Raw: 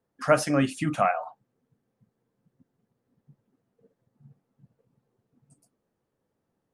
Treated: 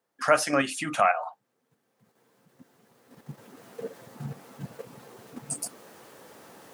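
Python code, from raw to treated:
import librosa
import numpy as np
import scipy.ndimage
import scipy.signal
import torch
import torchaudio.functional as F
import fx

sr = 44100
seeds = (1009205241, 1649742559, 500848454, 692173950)

p1 = fx.recorder_agc(x, sr, target_db=-15.0, rise_db_per_s=11.0, max_gain_db=30)
p2 = fx.highpass(p1, sr, hz=880.0, slope=6)
p3 = fx.level_steps(p2, sr, step_db=15)
y = p2 + F.gain(torch.from_numpy(p3), 3.0).numpy()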